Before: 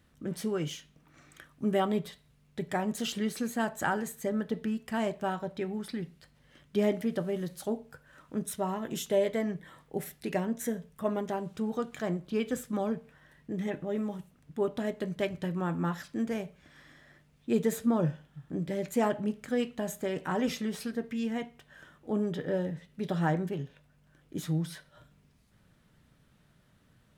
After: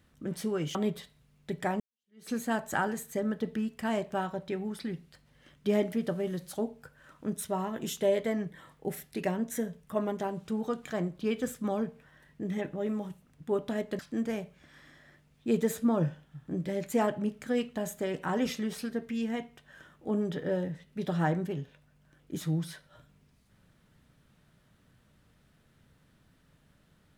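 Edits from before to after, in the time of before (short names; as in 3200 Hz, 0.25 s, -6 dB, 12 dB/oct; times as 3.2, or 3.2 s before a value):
0.75–1.84 cut
2.89–3.39 fade in exponential
15.08–16.01 cut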